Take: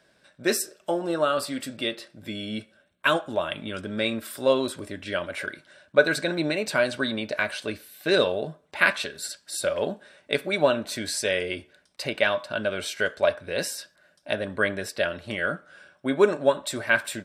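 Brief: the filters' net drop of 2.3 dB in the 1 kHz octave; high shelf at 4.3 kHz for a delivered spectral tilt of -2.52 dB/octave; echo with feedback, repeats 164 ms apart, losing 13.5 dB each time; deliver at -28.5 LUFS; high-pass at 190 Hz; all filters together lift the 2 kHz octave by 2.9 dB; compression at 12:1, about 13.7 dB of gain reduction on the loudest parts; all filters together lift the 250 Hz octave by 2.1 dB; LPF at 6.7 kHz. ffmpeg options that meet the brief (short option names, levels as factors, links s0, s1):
-af "highpass=190,lowpass=6700,equalizer=f=250:t=o:g=4.5,equalizer=f=1000:t=o:g=-6,equalizer=f=2000:t=o:g=5,highshelf=f=4300:g=7,acompressor=threshold=0.0501:ratio=12,aecho=1:1:164|328:0.211|0.0444,volume=1.41"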